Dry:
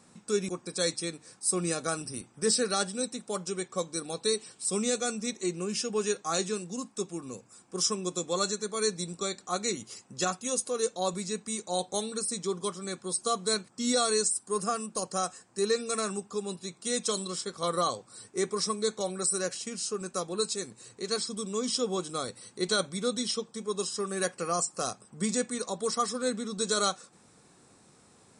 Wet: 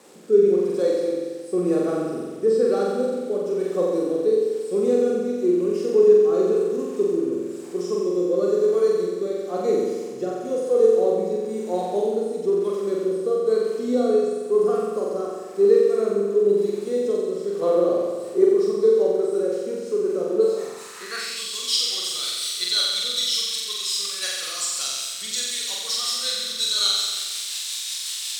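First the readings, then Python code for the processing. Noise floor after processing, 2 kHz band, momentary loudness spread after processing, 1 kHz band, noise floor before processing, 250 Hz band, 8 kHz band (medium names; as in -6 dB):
-34 dBFS, +1.0 dB, 9 LU, -0.5 dB, -61 dBFS, +8.0 dB, +0.5 dB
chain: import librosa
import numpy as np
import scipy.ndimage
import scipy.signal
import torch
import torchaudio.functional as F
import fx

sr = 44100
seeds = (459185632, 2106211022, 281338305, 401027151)

p1 = x + 0.5 * 10.0 ** (-24.0 / 20.0) * np.diff(np.sign(x), prepend=np.sign(x[:1]))
p2 = fx.rider(p1, sr, range_db=10, speed_s=0.5)
p3 = p1 + (p2 * librosa.db_to_amplitude(-2.0))
p4 = fx.rotary_switch(p3, sr, hz=1.0, then_hz=5.5, switch_at_s=17.44)
p5 = fx.room_flutter(p4, sr, wall_m=7.7, rt60_s=1.5)
p6 = fx.filter_sweep_bandpass(p5, sr, from_hz=410.0, to_hz=3600.0, start_s=20.38, end_s=21.56, q=2.5)
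y = p6 * librosa.db_to_amplitude(7.5)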